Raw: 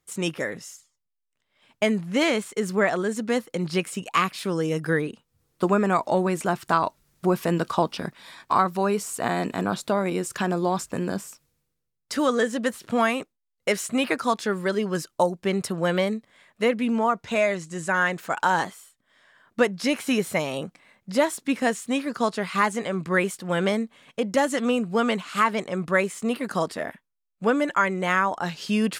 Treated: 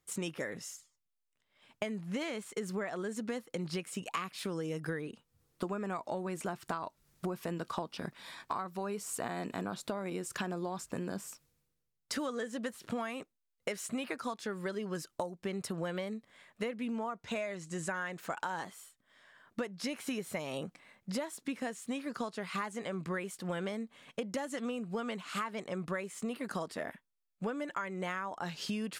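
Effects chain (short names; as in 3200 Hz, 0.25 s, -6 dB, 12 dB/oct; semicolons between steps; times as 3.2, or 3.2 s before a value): compressor 10:1, threshold -30 dBFS, peak gain reduction 16 dB; gain -3.5 dB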